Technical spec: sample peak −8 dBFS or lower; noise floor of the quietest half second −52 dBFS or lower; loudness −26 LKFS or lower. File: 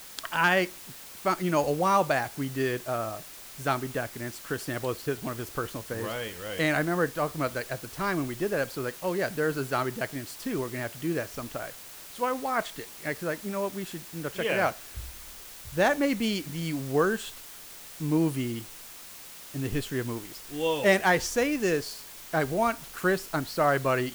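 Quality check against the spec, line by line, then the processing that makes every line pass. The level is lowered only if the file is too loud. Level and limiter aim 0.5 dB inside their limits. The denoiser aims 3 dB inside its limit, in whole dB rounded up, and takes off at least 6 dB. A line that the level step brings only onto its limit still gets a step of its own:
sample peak −12.0 dBFS: in spec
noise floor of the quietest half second −45 dBFS: out of spec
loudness −29.0 LKFS: in spec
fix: broadband denoise 10 dB, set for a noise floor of −45 dBFS

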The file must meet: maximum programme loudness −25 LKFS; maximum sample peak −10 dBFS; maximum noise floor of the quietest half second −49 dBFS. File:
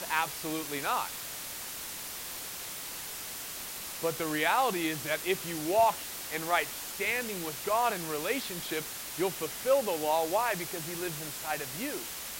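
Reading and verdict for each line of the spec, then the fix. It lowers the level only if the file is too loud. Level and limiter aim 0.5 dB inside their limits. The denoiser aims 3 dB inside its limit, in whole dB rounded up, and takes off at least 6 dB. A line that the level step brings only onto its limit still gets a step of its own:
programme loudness −31.5 LKFS: in spec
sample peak −12.5 dBFS: in spec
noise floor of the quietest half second −40 dBFS: out of spec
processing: broadband denoise 12 dB, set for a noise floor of −40 dBFS

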